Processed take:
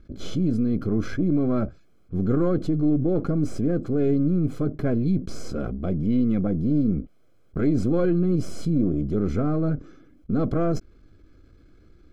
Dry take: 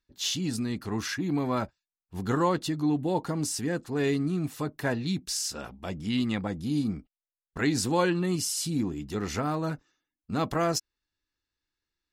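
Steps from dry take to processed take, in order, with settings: half-wave gain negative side -7 dB; running mean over 48 samples; fast leveller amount 50%; gain +8 dB

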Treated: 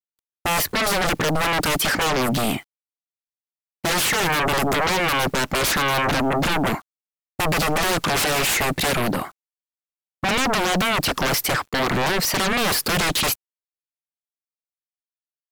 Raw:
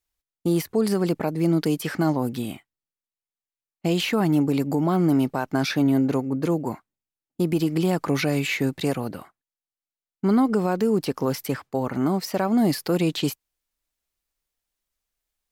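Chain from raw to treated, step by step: sine folder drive 18 dB, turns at -12 dBFS; bit-crush 8-bit; gain -5.5 dB

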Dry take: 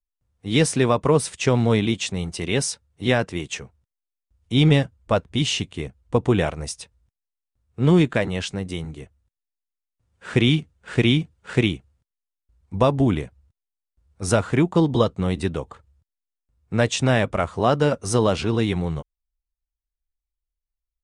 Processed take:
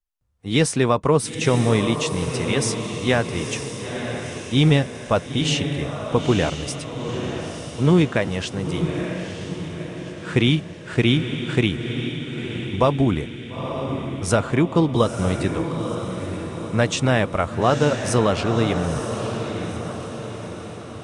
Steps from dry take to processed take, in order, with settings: bell 1200 Hz +2 dB; on a send: diffused feedback echo 0.941 s, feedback 53%, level -7 dB

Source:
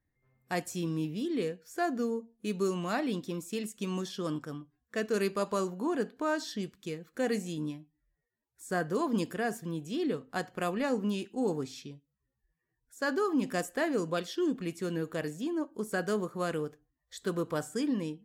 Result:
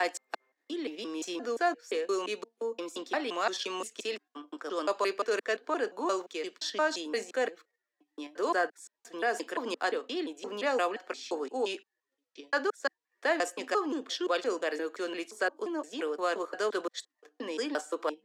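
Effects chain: slices in reverse order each 0.174 s, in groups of 4; steep high-pass 250 Hz 36 dB/oct; in parallel at +0.5 dB: level quantiser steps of 22 dB; on the sum: three-band isolator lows -18 dB, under 390 Hz, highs -18 dB, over 7500 Hz; gain +3 dB

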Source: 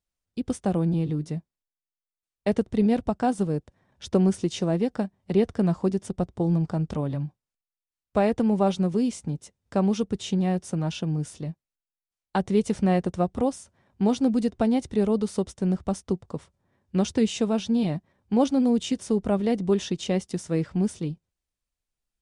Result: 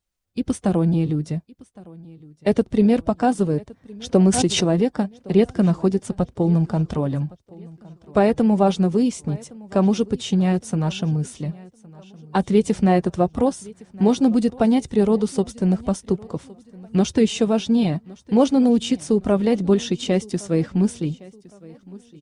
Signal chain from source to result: bin magnitudes rounded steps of 15 dB; feedback echo 1.113 s, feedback 40%, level -22.5 dB; 4.18–4.83 backwards sustainer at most 50 dB/s; gain +5.5 dB

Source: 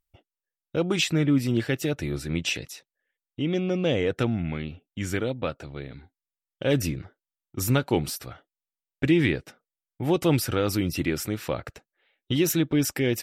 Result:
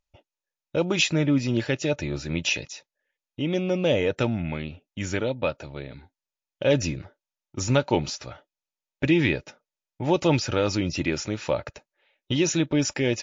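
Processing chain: high shelf 5300 Hz +7 dB; small resonant body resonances 590/890/2500 Hz, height 10 dB, ringing for 45 ms; MP3 56 kbps 16000 Hz

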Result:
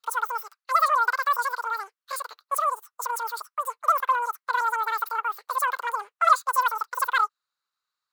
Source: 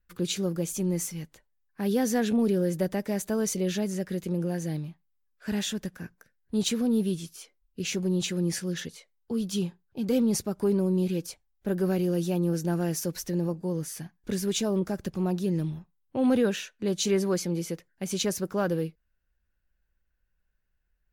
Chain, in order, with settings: resonant high-pass 470 Hz, resonance Q 3.6; wide varispeed 2.6×

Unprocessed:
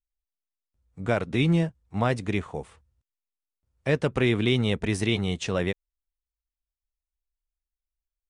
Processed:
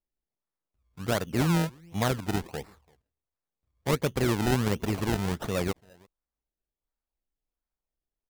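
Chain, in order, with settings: outdoor echo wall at 58 m, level -28 dB; decimation with a swept rate 27×, swing 100% 1.4 Hz; gain -2.5 dB

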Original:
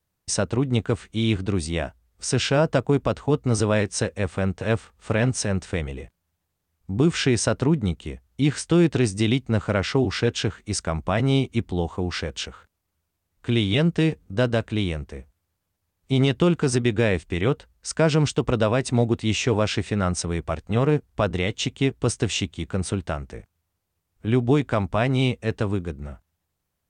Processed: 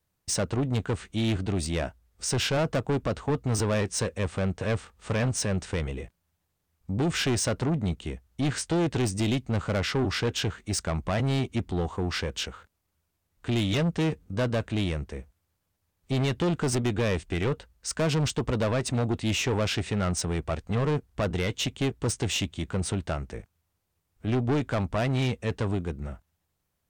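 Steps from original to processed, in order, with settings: soft clip -21.5 dBFS, distortion -9 dB

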